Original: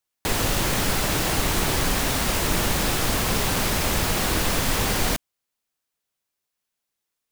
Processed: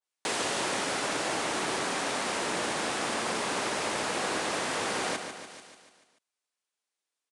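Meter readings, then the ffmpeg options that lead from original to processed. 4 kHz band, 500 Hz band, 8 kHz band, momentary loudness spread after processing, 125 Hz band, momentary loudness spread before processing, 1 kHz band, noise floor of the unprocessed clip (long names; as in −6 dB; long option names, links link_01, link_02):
−7.0 dB, −4.0 dB, −8.0 dB, 4 LU, −19.5 dB, 1 LU, −3.5 dB, −83 dBFS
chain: -af "highpass=330,aecho=1:1:146|292|438|584|730|876|1022:0.398|0.223|0.125|0.0699|0.0392|0.0219|0.0123,aresample=22050,aresample=44100,adynamicequalizer=threshold=0.00891:dfrequency=2300:dqfactor=0.7:tfrequency=2300:tqfactor=0.7:attack=5:release=100:ratio=0.375:range=2.5:mode=cutabove:tftype=highshelf,volume=-4dB"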